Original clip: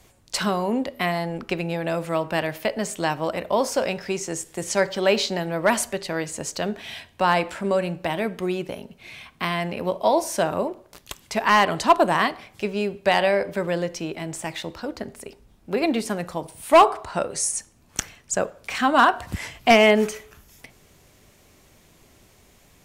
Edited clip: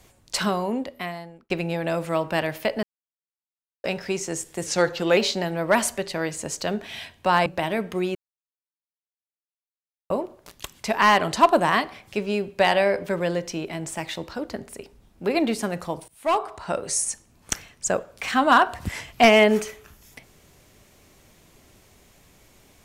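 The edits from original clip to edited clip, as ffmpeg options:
-filter_complex "[0:a]asplit=10[a][b][c][d][e][f][g][h][i][j];[a]atrim=end=1.5,asetpts=PTS-STARTPTS,afade=t=out:st=0.44:d=1.06[k];[b]atrim=start=1.5:end=2.83,asetpts=PTS-STARTPTS,afade=t=in:d=0.004:c=hsin,afade=t=out:st=1.326:d=0.004:c=hsin[l];[c]atrim=start=2.83:end=3.84,asetpts=PTS-STARTPTS,volume=0[m];[d]atrim=start=3.84:end=4.664,asetpts=PTS-STARTPTS,afade=t=in:d=0.004:c=hsin[n];[e]atrim=start=4.66:end=5.12,asetpts=PTS-STARTPTS,asetrate=39690,aresample=44100[o];[f]atrim=start=5.116:end=7.412[p];[g]atrim=start=7.928:end=8.62,asetpts=PTS-STARTPTS,afade=t=out:st=0.688:d=0.004:c=hsin[q];[h]atrim=start=8.62:end=10.57,asetpts=PTS-STARTPTS,volume=0[r];[i]atrim=start=10.57:end=16.55,asetpts=PTS-STARTPTS,afade=t=in:d=0.004:c=hsin,afade=t=out:st=5.976:d=0.004:c=hsin:silence=0.0841395[s];[j]atrim=start=16.55,asetpts=PTS-STARTPTS,afade=t=in:d=0.8:silence=0.0841395[t];[k][l][m][n]concat=n=4:v=0:a=1[u];[u][o]acrossfade=d=0.004:c1=hsin:c2=hsin[v];[v][p]acrossfade=d=0.004:c1=hsin:c2=hsin[w];[q][r][s][t]concat=n=4:v=0:a=1[x];[w][x]acrossfade=d=0.004:c1=hsin:c2=hsin"

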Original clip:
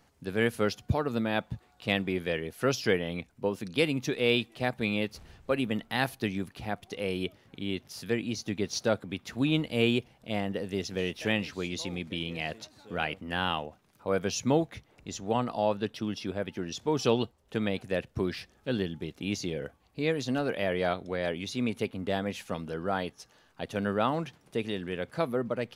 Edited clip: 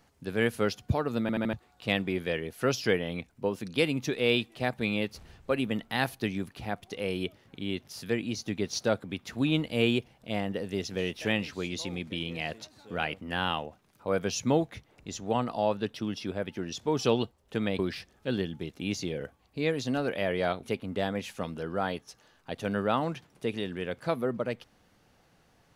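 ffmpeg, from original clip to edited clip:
-filter_complex "[0:a]asplit=7[a][b][c][d][e][f][g];[a]atrim=end=1.292[h];[b]atrim=start=1.208:end=1.292[i];[c]atrim=start=1.208:end=1.292[j];[d]atrim=start=1.208:end=1.292[k];[e]atrim=start=1.528:end=17.792[l];[f]atrim=start=18.198:end=21.042[m];[g]atrim=start=21.738[n];[h][i]acrossfade=d=0.004:c1=hsin:c2=hsin[o];[o][j]acrossfade=d=0.004:c1=hsin:c2=hsin[p];[p][k]acrossfade=d=0.004:c1=hsin:c2=hsin[q];[q][l]acrossfade=d=0.004:c1=hsin:c2=hsin[r];[r][m]acrossfade=d=0.004:c1=hsin:c2=hsin[s];[s][n]acrossfade=d=0.004:c1=hsin:c2=hsin"

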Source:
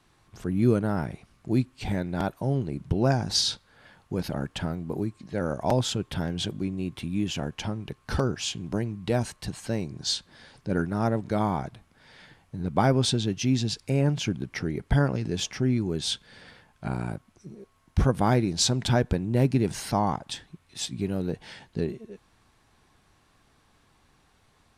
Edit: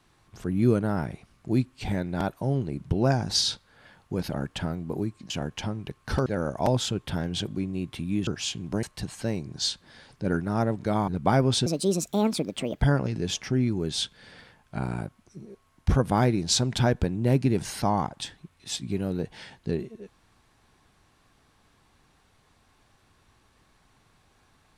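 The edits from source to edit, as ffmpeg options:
-filter_complex "[0:a]asplit=8[a][b][c][d][e][f][g][h];[a]atrim=end=5.302[i];[b]atrim=start=7.308:end=8.272[j];[c]atrim=start=5.298:end=7.312[k];[d]atrim=start=8.268:end=8.832[l];[e]atrim=start=9.278:end=11.532[m];[f]atrim=start=12.588:end=13.174[n];[g]atrim=start=13.17:end=14.9,asetpts=PTS-STARTPTS,asetrate=66591,aresample=44100,atrim=end_sample=50525,asetpts=PTS-STARTPTS[o];[h]atrim=start=14.896[p];[i][j]acrossfade=d=0.004:c1=hsin:c2=hsin[q];[q][k]acrossfade=d=0.004:c1=hsin:c2=hsin[r];[r][l]acrossfade=d=0.004:c1=hsin:c2=hsin[s];[s][m]acrossfade=d=0.004:c1=hsin:c2=hsin[t];[t][n]acrossfade=d=0.004:c1=hsin:c2=hsin[u];[u][o]acrossfade=d=0.004:c1=hsin:c2=hsin[v];[v][p]acrossfade=d=0.004:c1=hsin:c2=hsin"

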